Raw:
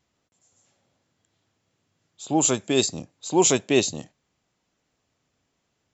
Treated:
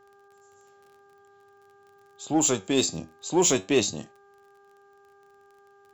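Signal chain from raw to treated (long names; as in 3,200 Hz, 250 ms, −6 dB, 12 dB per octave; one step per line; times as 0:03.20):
surface crackle 29 per second −45 dBFS
flanger 0.48 Hz, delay 8.5 ms, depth 4.1 ms, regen +75%
in parallel at −7 dB: hard clipping −24.5 dBFS, distortion −8 dB
on the sum: hum with harmonics 400 Hz, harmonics 4, −57 dBFS −4 dB per octave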